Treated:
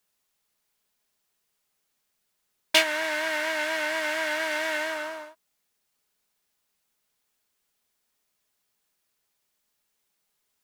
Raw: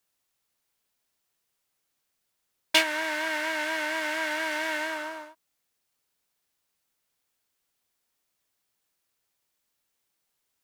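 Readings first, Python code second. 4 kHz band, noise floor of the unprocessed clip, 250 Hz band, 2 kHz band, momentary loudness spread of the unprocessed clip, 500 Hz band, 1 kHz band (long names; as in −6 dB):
+1.5 dB, −79 dBFS, −1.5 dB, +1.0 dB, 10 LU, +3.5 dB, 0.0 dB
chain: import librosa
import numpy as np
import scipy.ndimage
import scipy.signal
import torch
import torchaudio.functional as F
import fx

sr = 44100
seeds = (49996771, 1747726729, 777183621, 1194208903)

y = x + 0.31 * np.pad(x, (int(4.8 * sr / 1000.0), 0))[:len(x)]
y = y * librosa.db_to_amplitude(1.5)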